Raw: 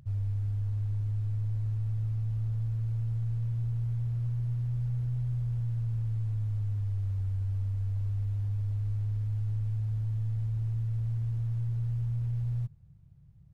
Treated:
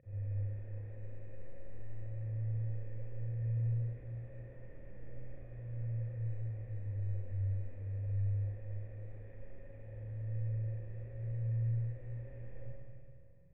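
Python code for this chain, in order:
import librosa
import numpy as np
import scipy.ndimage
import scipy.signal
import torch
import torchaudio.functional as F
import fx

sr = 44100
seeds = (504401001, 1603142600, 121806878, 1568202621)

y = fx.formant_cascade(x, sr, vowel='e')
y = fx.peak_eq(y, sr, hz=280.0, db=3.5, octaves=0.77)
y = fx.rev_schroeder(y, sr, rt60_s=2.3, comb_ms=31, drr_db=-8.0)
y = F.gain(torch.from_numpy(y), 4.5).numpy()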